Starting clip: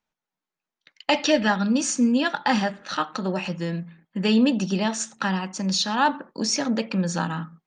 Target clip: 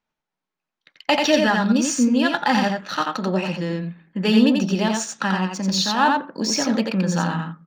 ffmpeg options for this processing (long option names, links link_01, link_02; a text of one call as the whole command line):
ffmpeg -i in.wav -af "aecho=1:1:87:0.668,adynamicsmooth=sensitivity=6:basefreq=6400,volume=2dB" out.wav